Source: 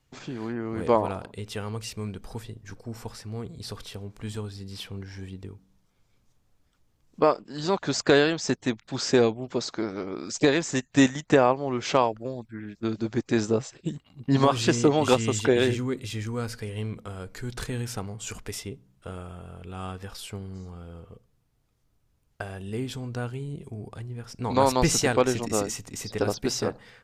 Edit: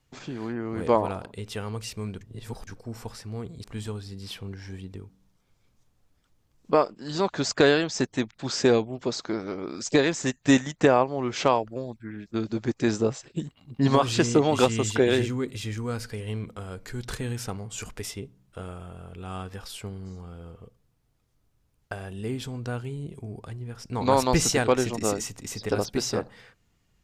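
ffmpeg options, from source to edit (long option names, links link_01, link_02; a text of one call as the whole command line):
ffmpeg -i in.wav -filter_complex "[0:a]asplit=4[link_01][link_02][link_03][link_04];[link_01]atrim=end=2.212[link_05];[link_02]atrim=start=2.208:end=2.672,asetpts=PTS-STARTPTS,areverse[link_06];[link_03]atrim=start=2.668:end=3.642[link_07];[link_04]atrim=start=4.128[link_08];[link_05][link_06]acrossfade=duration=0.004:curve1=hsin:curve2=hsin[link_09];[link_09][link_07]acrossfade=duration=0.004:curve1=hsin:curve2=hsin[link_10];[link_10][link_08]acrossfade=duration=0.004:curve1=hsin:curve2=hsin" out.wav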